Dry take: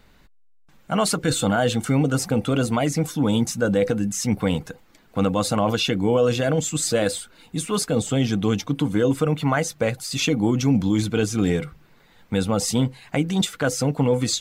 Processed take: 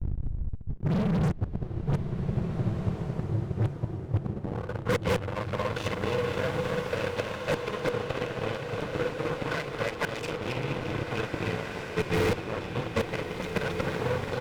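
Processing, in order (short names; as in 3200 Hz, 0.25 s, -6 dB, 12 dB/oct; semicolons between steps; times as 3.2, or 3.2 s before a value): short-time reversal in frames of 0.128 s; on a send: bouncing-ball echo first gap 0.27 s, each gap 0.75×, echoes 5; on the sum: low-pass sweep 110 Hz -> 2500 Hz, 4.25–5.01; air absorption 320 m; comb 2 ms, depth 73%; flipped gate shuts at -19 dBFS, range -33 dB; in parallel at -4.5 dB: fuzz box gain 47 dB, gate -55 dBFS; on the sum: compressor, threshold -26 dBFS, peak gain reduction 9.5 dB; bloom reverb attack 1.83 s, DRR 4 dB; gain +1.5 dB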